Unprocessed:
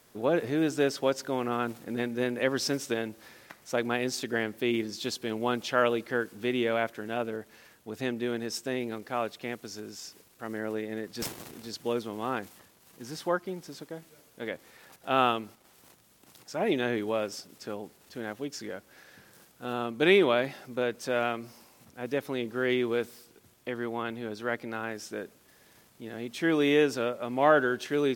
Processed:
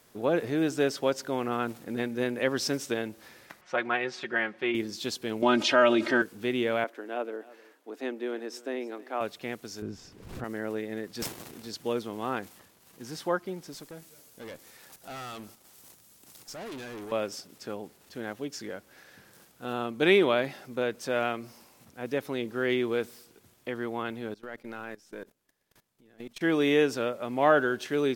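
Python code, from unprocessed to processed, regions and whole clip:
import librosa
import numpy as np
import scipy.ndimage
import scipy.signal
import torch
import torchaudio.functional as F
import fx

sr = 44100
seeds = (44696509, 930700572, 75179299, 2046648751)

y = fx.chain(x, sr, fx.lowpass(hz=1800.0, slope=12),
    fx.tilt_shelf(db=-9.0, hz=730.0),
    fx.comb(ms=5.5, depth=0.67), at=(3.61, 4.75))
y = fx.chain(y, sr, fx.bandpass_edges(low_hz=130.0, high_hz=5900.0),
    fx.comb(ms=3.2, depth=0.92),
    fx.env_flatten(amount_pct=50), at=(5.42, 6.22))
y = fx.chain(y, sr, fx.cheby1_highpass(hz=270.0, order=4),
    fx.high_shelf(hz=2900.0, db=-9.0),
    fx.echo_single(ms=307, db=-20.0), at=(6.84, 9.21))
y = fx.chain(y, sr, fx.riaa(side='playback'),
    fx.pre_swell(db_per_s=70.0), at=(9.82, 10.44))
y = fx.chain(y, sr, fx.bass_treble(bass_db=1, treble_db=8),
    fx.tube_stage(drive_db=38.0, bias=0.4), at=(13.73, 17.12))
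y = fx.chain(y, sr, fx.halfwave_gain(db=-3.0),
    fx.level_steps(step_db=20), at=(24.34, 26.41))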